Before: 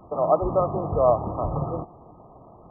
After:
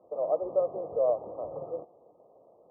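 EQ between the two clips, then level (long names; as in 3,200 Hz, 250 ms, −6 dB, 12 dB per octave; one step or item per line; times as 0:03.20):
resonant band-pass 520 Hz, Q 4.6
high-frequency loss of the air 470 metres
0.0 dB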